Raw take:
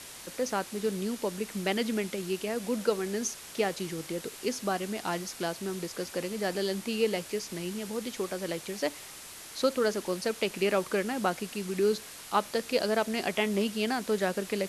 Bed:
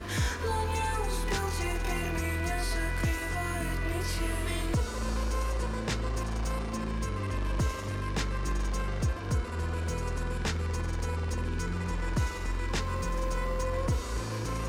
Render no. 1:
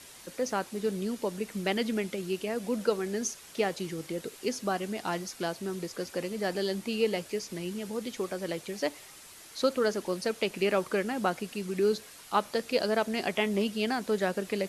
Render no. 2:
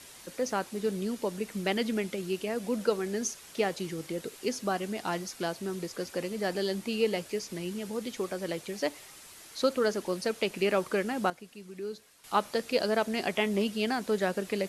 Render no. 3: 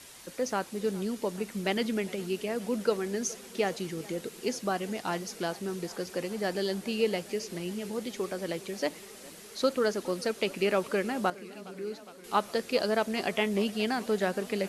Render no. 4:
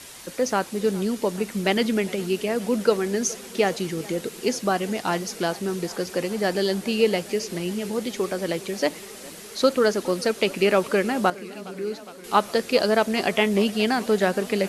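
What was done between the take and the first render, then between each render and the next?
denoiser 6 dB, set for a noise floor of -46 dBFS
11.3–12.24 gain -11.5 dB
warbling echo 0.414 s, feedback 78%, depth 83 cents, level -21 dB
gain +7.5 dB

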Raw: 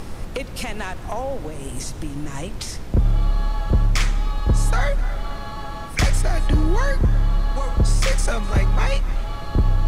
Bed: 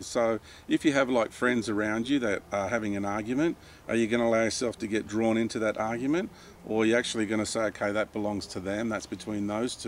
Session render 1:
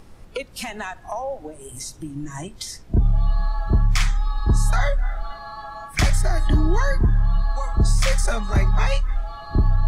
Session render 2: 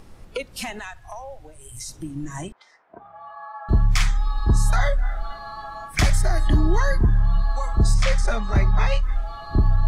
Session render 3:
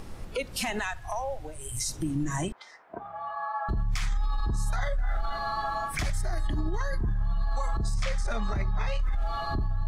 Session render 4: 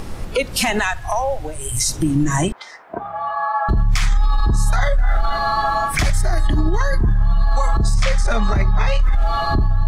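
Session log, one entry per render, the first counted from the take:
noise print and reduce 14 dB
0.79–1.89 EQ curve 120 Hz 0 dB, 200 Hz -16 dB, 2200 Hz -2 dB; 2.52–3.69 Butterworth band-pass 1100 Hz, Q 1; 7.94–9.03 air absorption 75 m
negative-ratio compressor -22 dBFS, ratio -1; limiter -21 dBFS, peak gain reduction 10 dB
gain +12 dB

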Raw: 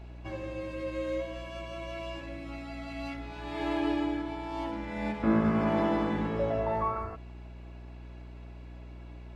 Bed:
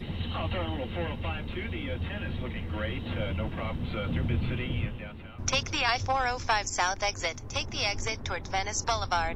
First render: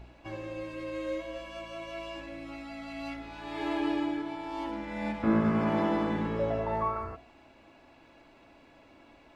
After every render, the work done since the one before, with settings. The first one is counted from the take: de-hum 60 Hz, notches 12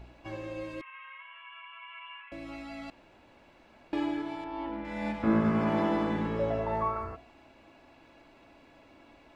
0.81–2.32 Chebyshev band-pass 960–3000 Hz, order 4; 2.9–3.93 room tone; 4.44–4.85 air absorption 280 m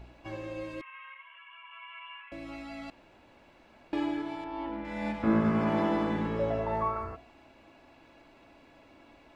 1.14–1.72 ensemble effect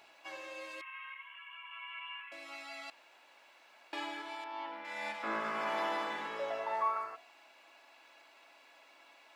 HPF 840 Hz 12 dB/oct; high shelf 3800 Hz +6.5 dB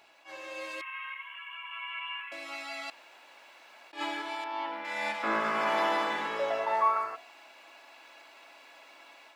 AGC gain up to 7 dB; attack slew limiter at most 230 dB/s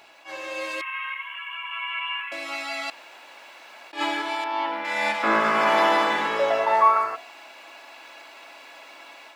gain +8.5 dB

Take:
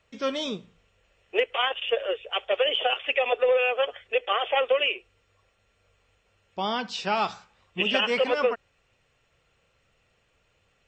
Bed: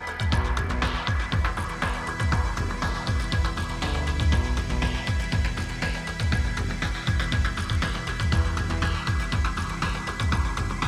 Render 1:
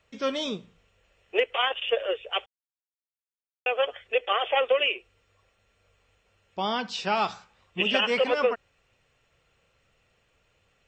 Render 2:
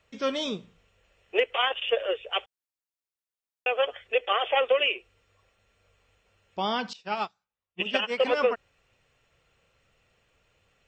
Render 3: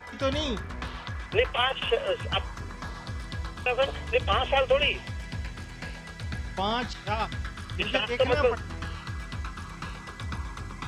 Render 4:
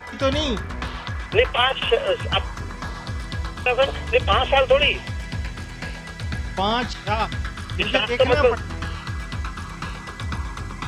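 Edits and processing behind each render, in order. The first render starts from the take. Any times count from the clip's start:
2.46–3.66 mute
6.93–8.2 upward expander 2.5:1, over -41 dBFS
add bed -10.5 dB
gain +6.5 dB

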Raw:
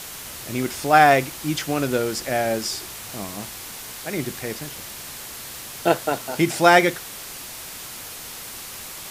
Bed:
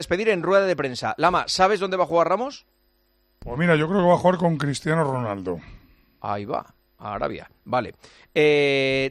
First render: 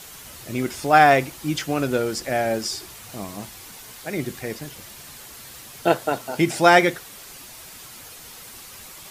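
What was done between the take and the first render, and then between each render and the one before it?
denoiser 7 dB, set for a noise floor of -37 dBFS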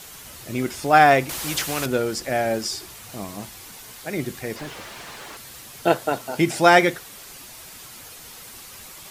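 1.29–1.86 spectral compressor 2:1; 4.56–5.37 overdrive pedal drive 27 dB, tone 1400 Hz, clips at -22.5 dBFS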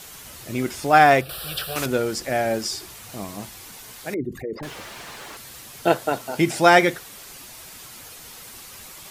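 1.21–1.76 fixed phaser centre 1400 Hz, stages 8; 4.14–4.63 formant sharpening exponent 3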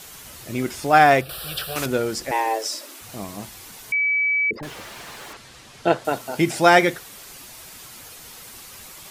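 2.31–3.01 frequency shift +220 Hz; 3.92–4.51 bleep 2290 Hz -17.5 dBFS; 5.33–6.05 air absorption 70 m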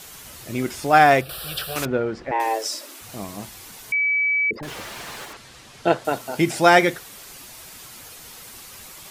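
1.85–2.4 LPF 2000 Hz; 4.68–5.25 gain +3 dB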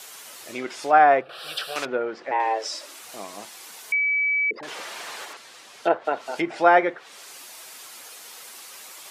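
treble ducked by the level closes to 1500 Hz, closed at -16 dBFS; HPF 440 Hz 12 dB/oct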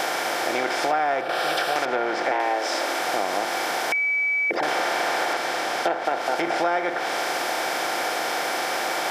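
per-bin compression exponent 0.4; compressor 6:1, threshold -20 dBFS, peak gain reduction 11 dB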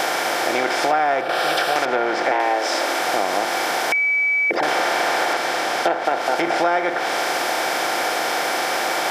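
gain +4 dB

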